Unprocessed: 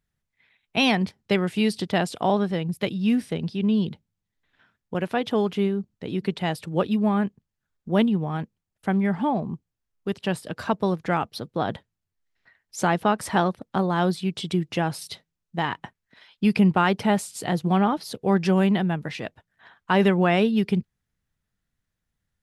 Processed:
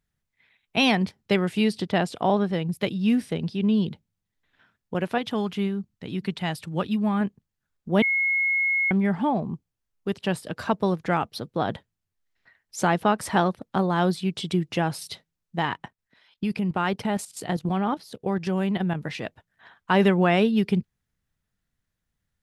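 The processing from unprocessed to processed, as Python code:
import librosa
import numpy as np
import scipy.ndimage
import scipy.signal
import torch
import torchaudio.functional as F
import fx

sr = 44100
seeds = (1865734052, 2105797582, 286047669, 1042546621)

y = fx.high_shelf(x, sr, hz=5200.0, db=-6.5, at=(1.64, 2.53))
y = fx.peak_eq(y, sr, hz=460.0, db=-7.0, octaves=1.4, at=(5.18, 7.21))
y = fx.level_steps(y, sr, step_db=12, at=(15.76, 18.94), fade=0.02)
y = fx.edit(y, sr, fx.bleep(start_s=8.02, length_s=0.89, hz=2170.0, db=-20.0), tone=tone)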